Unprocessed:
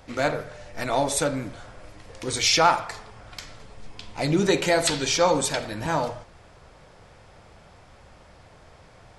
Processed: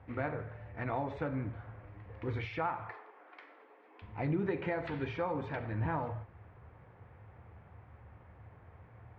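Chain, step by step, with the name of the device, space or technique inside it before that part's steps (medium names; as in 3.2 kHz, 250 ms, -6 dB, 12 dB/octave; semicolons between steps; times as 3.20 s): 2.90–4.02 s: steep high-pass 290 Hz 48 dB/octave; bass amplifier (compression 4:1, threshold -23 dBFS, peak gain reduction 9 dB; cabinet simulation 61–2100 Hz, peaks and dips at 77 Hz +10 dB, 110 Hz +10 dB, 600 Hz -6 dB, 1.4 kHz -3 dB); trim -6.5 dB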